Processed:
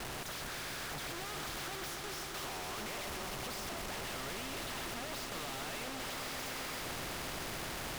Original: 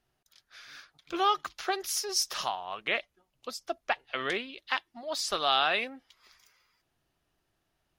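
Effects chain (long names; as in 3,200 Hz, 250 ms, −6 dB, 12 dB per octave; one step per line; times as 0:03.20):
sign of each sample alone
low-pass filter 1,100 Hz 6 dB per octave
noise gate with hold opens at −35 dBFS
echo that builds up and dies away 129 ms, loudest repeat 5, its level −12 dB
every bin compressed towards the loudest bin 2 to 1
level −3 dB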